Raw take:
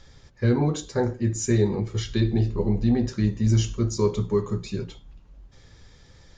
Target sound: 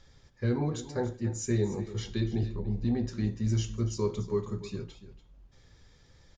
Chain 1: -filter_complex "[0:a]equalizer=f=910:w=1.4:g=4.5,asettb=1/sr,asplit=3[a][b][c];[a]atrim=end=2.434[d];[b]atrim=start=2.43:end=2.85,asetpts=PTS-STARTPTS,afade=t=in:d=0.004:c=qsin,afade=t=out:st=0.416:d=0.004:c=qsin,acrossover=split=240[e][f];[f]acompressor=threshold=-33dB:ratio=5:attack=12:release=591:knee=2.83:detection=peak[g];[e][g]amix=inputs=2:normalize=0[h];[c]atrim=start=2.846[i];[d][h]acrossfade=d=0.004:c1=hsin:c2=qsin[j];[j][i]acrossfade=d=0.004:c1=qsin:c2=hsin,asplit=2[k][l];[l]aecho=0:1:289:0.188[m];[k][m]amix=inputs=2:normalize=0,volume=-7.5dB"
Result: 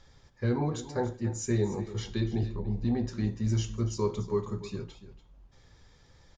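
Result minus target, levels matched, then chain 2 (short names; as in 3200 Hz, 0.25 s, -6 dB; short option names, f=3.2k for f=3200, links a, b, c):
1000 Hz band +3.5 dB
-filter_complex "[0:a]asettb=1/sr,asplit=3[a][b][c];[a]atrim=end=2.434[d];[b]atrim=start=2.43:end=2.85,asetpts=PTS-STARTPTS,afade=t=in:d=0.004:c=qsin,afade=t=out:st=0.416:d=0.004:c=qsin,acrossover=split=240[e][f];[f]acompressor=threshold=-33dB:ratio=5:attack=12:release=591:knee=2.83:detection=peak[g];[e][g]amix=inputs=2:normalize=0[h];[c]atrim=start=2.846[i];[d][h]acrossfade=d=0.004:c1=hsin:c2=qsin[j];[j][i]acrossfade=d=0.004:c1=qsin:c2=hsin,asplit=2[k][l];[l]aecho=0:1:289:0.188[m];[k][m]amix=inputs=2:normalize=0,volume=-7.5dB"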